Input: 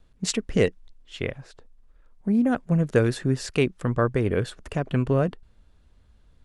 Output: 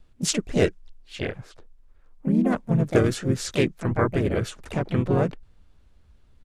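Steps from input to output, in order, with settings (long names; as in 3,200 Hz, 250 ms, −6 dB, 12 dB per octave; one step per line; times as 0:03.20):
pitch-shifted copies added −5 semitones −8 dB, −3 semitones −5 dB, +5 semitones −7 dB
dynamic equaliser 6,900 Hz, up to +5 dB, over −47 dBFS, Q 1.4
level −2 dB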